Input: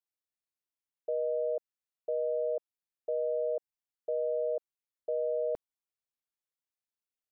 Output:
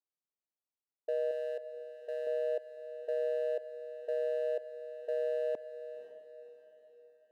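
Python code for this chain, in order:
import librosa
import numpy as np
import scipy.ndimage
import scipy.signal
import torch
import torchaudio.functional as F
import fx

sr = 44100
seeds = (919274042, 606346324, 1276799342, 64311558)

p1 = fx.wiener(x, sr, points=25)
p2 = scipy.signal.sosfilt(scipy.signal.butter(2, 240.0, 'highpass', fs=sr, output='sos'), p1)
p3 = fx.low_shelf(p2, sr, hz=490.0, db=-9.5, at=(1.31, 2.27))
y = p3 + fx.echo_diffused(p3, sr, ms=538, feedback_pct=44, wet_db=-11.5, dry=0)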